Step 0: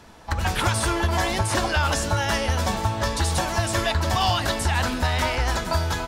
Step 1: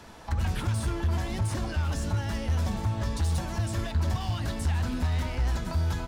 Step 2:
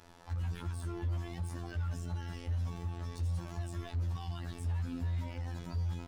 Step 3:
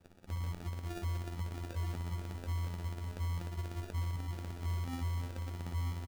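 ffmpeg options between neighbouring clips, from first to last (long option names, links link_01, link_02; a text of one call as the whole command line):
ffmpeg -i in.wav -filter_complex "[0:a]volume=20dB,asoftclip=hard,volume=-20dB,acrossover=split=270[link_01][link_02];[link_02]acompressor=threshold=-38dB:ratio=5[link_03];[link_01][link_03]amix=inputs=2:normalize=0" out.wav
ffmpeg -i in.wav -af "afftfilt=real='hypot(re,im)*cos(PI*b)':imag='0':win_size=2048:overlap=0.75,volume=23dB,asoftclip=hard,volume=-23dB,volume=-6dB" out.wav
ffmpeg -i in.wav -af "acrusher=samples=42:mix=1:aa=0.000001,aecho=1:1:938:0.355,volume=-2dB" out.wav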